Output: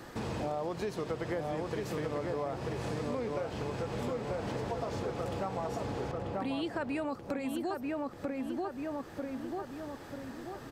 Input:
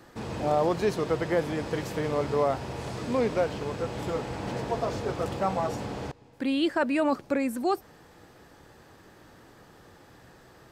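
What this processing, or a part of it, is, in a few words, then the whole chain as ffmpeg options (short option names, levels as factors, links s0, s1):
serial compression, peaks first: -filter_complex "[0:a]asplit=2[s0][s1];[s1]adelay=939,lowpass=f=1900:p=1,volume=0.631,asplit=2[s2][s3];[s3]adelay=939,lowpass=f=1900:p=1,volume=0.4,asplit=2[s4][s5];[s5]adelay=939,lowpass=f=1900:p=1,volume=0.4,asplit=2[s6][s7];[s7]adelay=939,lowpass=f=1900:p=1,volume=0.4,asplit=2[s8][s9];[s9]adelay=939,lowpass=f=1900:p=1,volume=0.4[s10];[s0][s2][s4][s6][s8][s10]amix=inputs=6:normalize=0,acompressor=threshold=0.0224:ratio=4,acompressor=threshold=0.00501:ratio=1.5,volume=1.78"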